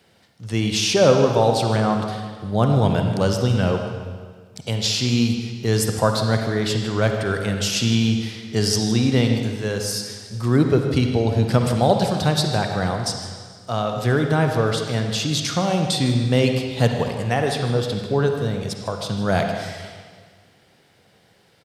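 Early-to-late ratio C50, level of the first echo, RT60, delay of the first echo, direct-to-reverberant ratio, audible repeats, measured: 4.0 dB, -14.5 dB, 1.8 s, 0.155 s, 3.5 dB, 1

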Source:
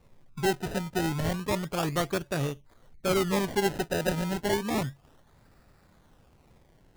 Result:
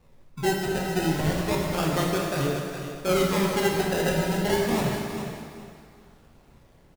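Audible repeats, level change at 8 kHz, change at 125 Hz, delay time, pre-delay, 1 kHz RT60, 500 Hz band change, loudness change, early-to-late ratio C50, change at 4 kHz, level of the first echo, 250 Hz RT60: 2, +4.0 dB, +4.0 dB, 0.414 s, 6 ms, 2.1 s, +4.0 dB, +3.5 dB, 0.5 dB, +4.0 dB, -9.5 dB, 2.1 s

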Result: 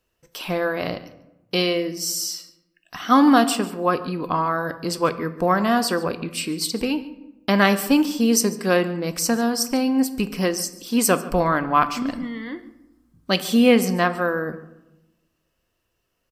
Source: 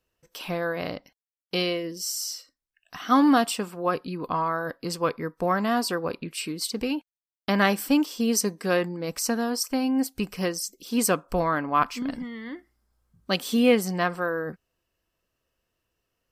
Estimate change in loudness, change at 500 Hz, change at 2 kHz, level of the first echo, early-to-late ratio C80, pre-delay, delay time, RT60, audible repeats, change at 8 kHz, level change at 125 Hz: +5.0 dB, +4.5 dB, +4.5 dB, -20.5 dB, 15.5 dB, 3 ms, 0.144 s, 0.95 s, 1, +4.5 dB, +5.5 dB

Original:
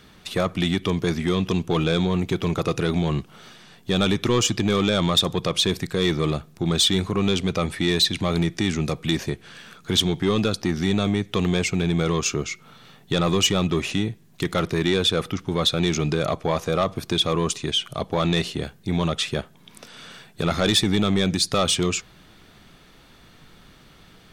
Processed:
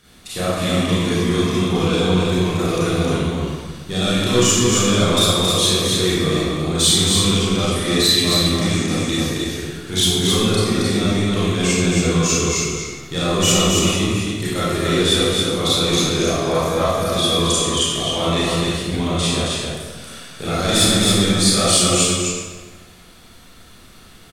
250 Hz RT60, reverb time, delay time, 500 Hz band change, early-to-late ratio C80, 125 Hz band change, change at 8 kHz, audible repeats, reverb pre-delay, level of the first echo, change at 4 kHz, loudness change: 1.5 s, 1.4 s, 0.27 s, +5.0 dB, -3.0 dB, +4.5 dB, +11.5 dB, 1, 28 ms, -3.5 dB, +6.0 dB, +5.5 dB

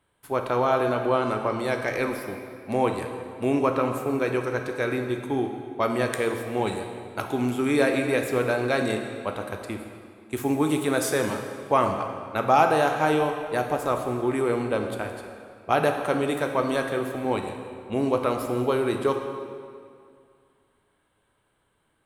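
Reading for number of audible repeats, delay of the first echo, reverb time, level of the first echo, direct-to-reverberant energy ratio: none, none, 2.3 s, none, 4.0 dB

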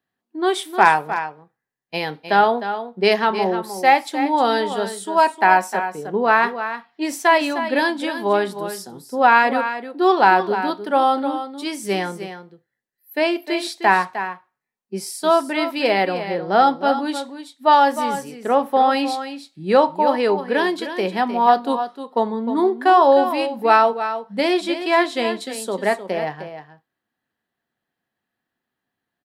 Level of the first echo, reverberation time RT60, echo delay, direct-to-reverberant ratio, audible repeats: -10.5 dB, none, 0.307 s, none, 1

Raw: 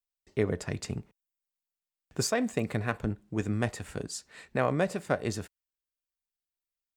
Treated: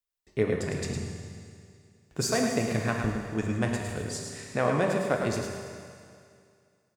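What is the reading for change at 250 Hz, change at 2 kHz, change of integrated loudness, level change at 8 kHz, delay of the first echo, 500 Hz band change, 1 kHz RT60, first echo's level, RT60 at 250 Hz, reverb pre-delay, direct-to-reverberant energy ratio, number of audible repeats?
+2.5 dB, +3.0 dB, +2.5 dB, +3.0 dB, 0.107 s, +3.0 dB, 2.3 s, -6.5 dB, 2.3 s, 10 ms, 0.0 dB, 1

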